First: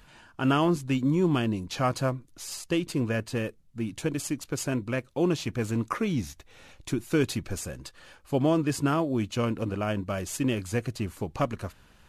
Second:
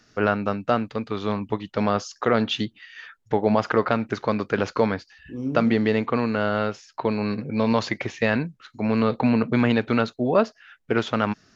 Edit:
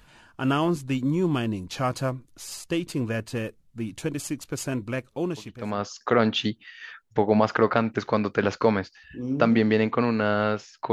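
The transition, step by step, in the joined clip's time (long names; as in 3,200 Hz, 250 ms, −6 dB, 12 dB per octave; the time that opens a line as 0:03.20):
first
0:05.57: continue with second from 0:01.72, crossfade 0.98 s quadratic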